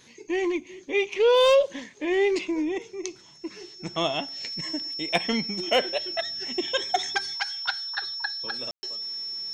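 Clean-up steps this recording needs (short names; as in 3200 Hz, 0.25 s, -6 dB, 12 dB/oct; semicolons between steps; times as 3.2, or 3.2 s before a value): clip repair -11.5 dBFS; notch 5400 Hz, Q 30; room tone fill 8.71–8.83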